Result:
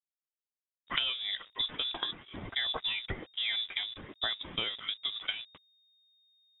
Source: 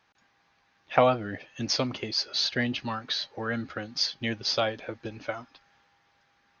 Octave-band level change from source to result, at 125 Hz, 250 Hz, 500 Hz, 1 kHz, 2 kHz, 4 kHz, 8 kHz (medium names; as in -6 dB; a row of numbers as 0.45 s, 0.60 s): -13.0 dB, -16.5 dB, -19.0 dB, -13.0 dB, -3.5 dB, -0.5 dB, no reading